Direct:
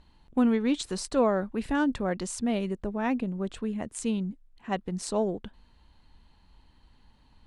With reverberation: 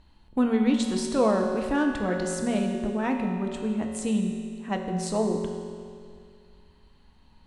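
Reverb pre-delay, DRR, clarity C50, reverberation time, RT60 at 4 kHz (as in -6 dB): 5 ms, 1.5 dB, 4.0 dB, 2.3 s, 2.1 s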